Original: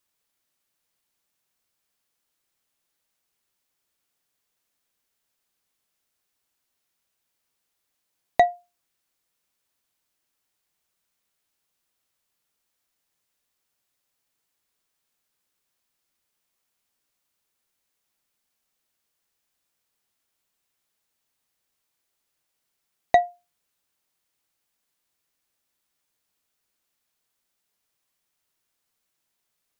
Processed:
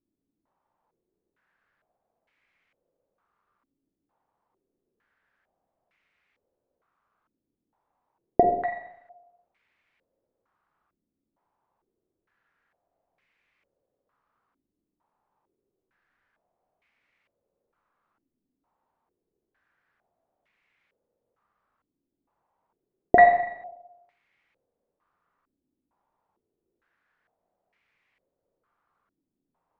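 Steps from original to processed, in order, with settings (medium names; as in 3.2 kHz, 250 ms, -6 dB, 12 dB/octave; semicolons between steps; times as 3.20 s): Schroeder reverb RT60 0.85 s, combs from 32 ms, DRR 3.5 dB; step-sequenced low-pass 2.2 Hz 290–2200 Hz; trim +4.5 dB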